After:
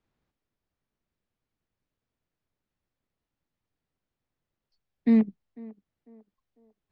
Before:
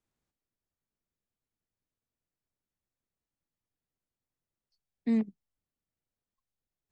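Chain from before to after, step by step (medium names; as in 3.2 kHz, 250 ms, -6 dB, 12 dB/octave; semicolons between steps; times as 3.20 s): distance through air 160 m; on a send: band-passed feedback delay 498 ms, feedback 48%, band-pass 590 Hz, level -18 dB; on the sum: trim +7.5 dB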